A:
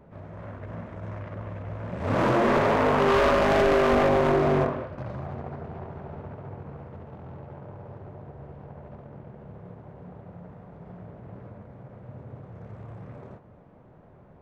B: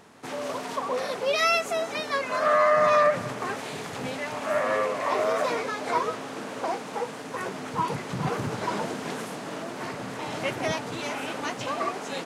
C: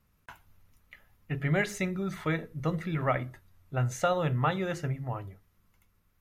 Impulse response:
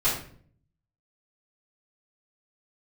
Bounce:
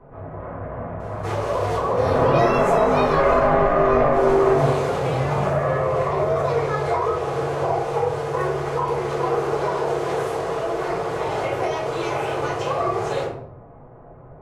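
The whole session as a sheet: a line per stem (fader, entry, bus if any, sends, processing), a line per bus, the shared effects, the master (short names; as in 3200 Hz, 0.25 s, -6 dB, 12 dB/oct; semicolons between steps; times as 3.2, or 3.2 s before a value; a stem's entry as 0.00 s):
+0.5 dB, 0.00 s, send -3 dB, compressor, threshold -26 dBFS, peak gain reduction 8 dB; three-band isolator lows -13 dB, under 510 Hz, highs -17 dB, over 2700 Hz
0.0 dB, 1.00 s, send -3.5 dB, steep high-pass 340 Hz 72 dB/oct; limiter -20.5 dBFS, peak gain reduction 9.5 dB; compressor, threshold -31 dBFS, peak gain reduction 7 dB
-7.5 dB, 0.85 s, no send, dry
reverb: on, RT60 0.50 s, pre-delay 3 ms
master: tilt shelf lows +7.5 dB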